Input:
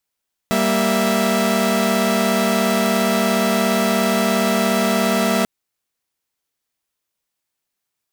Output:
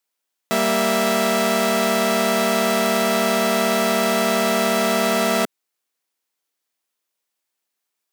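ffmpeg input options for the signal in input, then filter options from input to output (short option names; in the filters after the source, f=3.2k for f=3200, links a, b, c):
-f lavfi -i "aevalsrc='0.133*((2*mod(196*t,1)-1)+(2*mod(233.08*t,1)-1)+(2*mod(659.26*t,1)-1))':d=4.94:s=44100"
-af "highpass=250"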